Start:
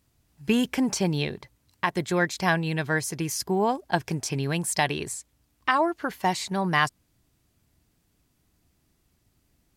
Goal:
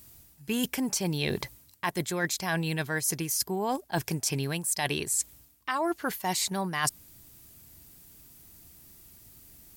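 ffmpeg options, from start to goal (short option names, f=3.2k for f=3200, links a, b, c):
-af "aemphasis=mode=production:type=50fm,areverse,acompressor=threshold=-35dB:ratio=12,areverse,volume=9dB"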